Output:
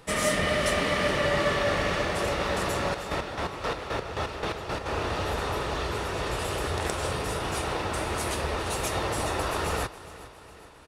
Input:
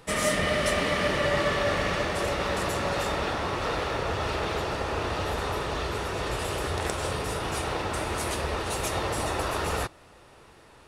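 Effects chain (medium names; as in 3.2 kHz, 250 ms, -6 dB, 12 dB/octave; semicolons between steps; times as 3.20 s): 2.85–4.86 s: square tremolo 3.8 Hz, depth 60%, duty 35%; feedback delay 411 ms, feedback 51%, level -17 dB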